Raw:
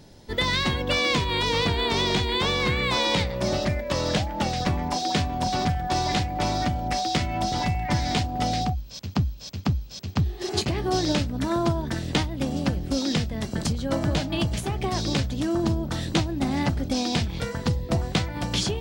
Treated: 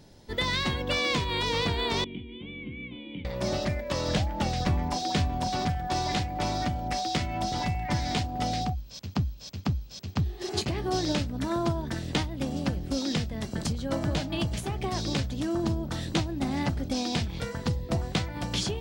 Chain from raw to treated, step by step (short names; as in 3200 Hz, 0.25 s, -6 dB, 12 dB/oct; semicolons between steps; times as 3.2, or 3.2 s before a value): 2.04–3.25 vocal tract filter i; 4.08–5.4 low shelf 110 Hz +7.5 dB; gain -4 dB